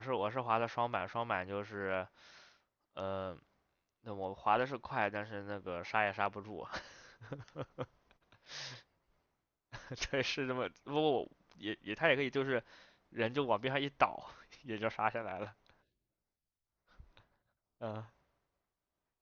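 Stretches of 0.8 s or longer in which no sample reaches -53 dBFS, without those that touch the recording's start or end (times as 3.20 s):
8.81–9.72 s
15.69–16.99 s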